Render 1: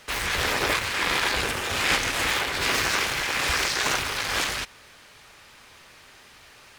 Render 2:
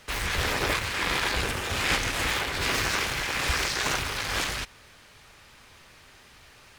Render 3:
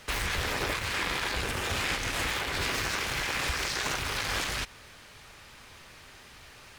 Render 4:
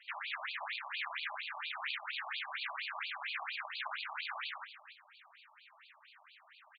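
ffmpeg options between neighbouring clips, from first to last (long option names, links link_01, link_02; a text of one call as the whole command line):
ffmpeg -i in.wav -af "lowshelf=frequency=170:gain=8,volume=-3dB" out.wav
ffmpeg -i in.wav -af "acompressor=threshold=-29dB:ratio=6,volume=2dB" out.wav
ffmpeg -i in.wav -af "aecho=1:1:285:0.211,afftfilt=real='re*between(b*sr/1024,830*pow(3400/830,0.5+0.5*sin(2*PI*4.3*pts/sr))/1.41,830*pow(3400/830,0.5+0.5*sin(2*PI*4.3*pts/sr))*1.41)':imag='im*between(b*sr/1024,830*pow(3400/830,0.5+0.5*sin(2*PI*4.3*pts/sr))/1.41,830*pow(3400/830,0.5+0.5*sin(2*PI*4.3*pts/sr))*1.41)':win_size=1024:overlap=0.75,volume=-4dB" out.wav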